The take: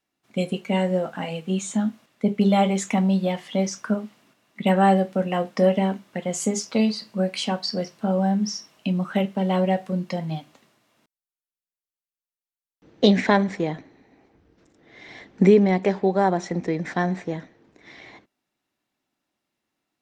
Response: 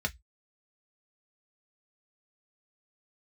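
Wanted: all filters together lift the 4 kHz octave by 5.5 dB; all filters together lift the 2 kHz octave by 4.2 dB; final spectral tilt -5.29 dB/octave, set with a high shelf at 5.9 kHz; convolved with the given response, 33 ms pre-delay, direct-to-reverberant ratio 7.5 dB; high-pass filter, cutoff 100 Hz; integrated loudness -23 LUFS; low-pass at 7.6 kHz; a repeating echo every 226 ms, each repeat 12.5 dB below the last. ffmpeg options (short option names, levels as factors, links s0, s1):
-filter_complex "[0:a]highpass=100,lowpass=7600,equalizer=f=2000:t=o:g=3.5,equalizer=f=4000:t=o:g=5,highshelf=f=5900:g=3.5,aecho=1:1:226|452|678:0.237|0.0569|0.0137,asplit=2[s0][s1];[1:a]atrim=start_sample=2205,adelay=33[s2];[s1][s2]afir=irnorm=-1:irlink=0,volume=0.224[s3];[s0][s3]amix=inputs=2:normalize=0,volume=0.841"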